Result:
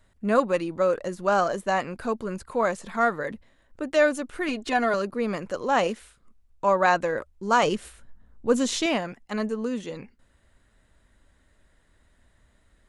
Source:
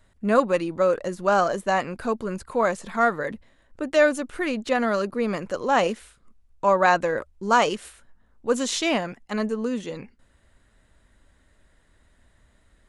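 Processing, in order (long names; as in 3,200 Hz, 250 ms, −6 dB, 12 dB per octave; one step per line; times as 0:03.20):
0:04.48–0:04.94: comb filter 2.8 ms, depth 84%
0:07.63–0:08.86: low-shelf EQ 300 Hz +9.5 dB
level −2 dB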